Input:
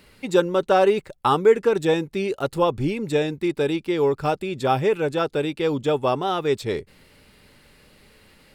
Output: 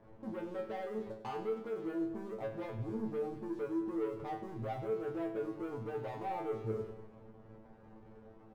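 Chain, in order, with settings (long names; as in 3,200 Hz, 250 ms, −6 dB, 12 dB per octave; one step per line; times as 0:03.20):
Butterworth low-pass 990 Hz
mains-hum notches 50/100/150/200/250/300/350/400 Hz
downward compressor 6 to 1, threshold −30 dBFS, peak gain reduction 18 dB
leveller curve on the samples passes 3
brickwall limiter −26.5 dBFS, peak gain reduction 6.5 dB
tuned comb filter 110 Hz, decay 0.3 s, harmonics all, mix 100%
repeating echo 97 ms, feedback 53%, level −11.5 dB
level +1 dB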